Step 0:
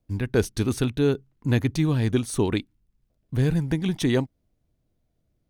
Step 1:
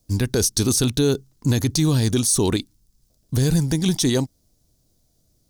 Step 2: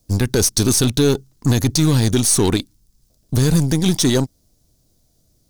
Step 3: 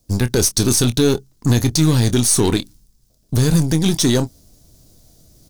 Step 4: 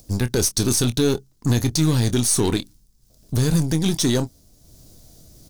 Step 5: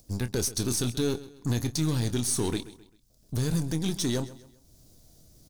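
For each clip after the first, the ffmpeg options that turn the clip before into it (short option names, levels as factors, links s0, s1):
-af "highshelf=f=3600:t=q:w=1.5:g=13.5,alimiter=limit=0.158:level=0:latency=1:release=46,volume=2.11"
-af "aeval=exprs='0.335*(cos(1*acos(clip(val(0)/0.335,-1,1)))-cos(1*PI/2))+0.0211*(cos(8*acos(clip(val(0)/0.335,-1,1)))-cos(8*PI/2))':c=same,volume=1.5"
-filter_complex "[0:a]areverse,acompressor=mode=upward:threshold=0.0126:ratio=2.5,areverse,asplit=2[s0][s1];[s1]adelay=25,volume=0.251[s2];[s0][s2]amix=inputs=2:normalize=0"
-af "acompressor=mode=upward:threshold=0.0178:ratio=2.5,volume=0.631"
-af "aecho=1:1:131|262|393:0.141|0.0551|0.0215,volume=0.376"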